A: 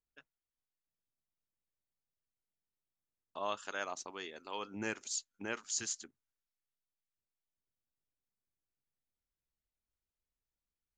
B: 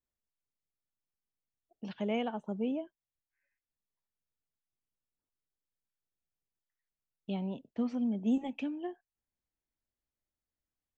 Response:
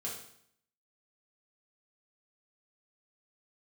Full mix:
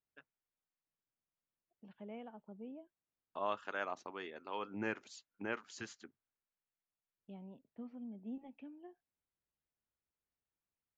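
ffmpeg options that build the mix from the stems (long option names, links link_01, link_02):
-filter_complex "[0:a]highpass=82,volume=0.5dB[link_01];[1:a]volume=-15.5dB[link_02];[link_01][link_02]amix=inputs=2:normalize=0,lowpass=2300"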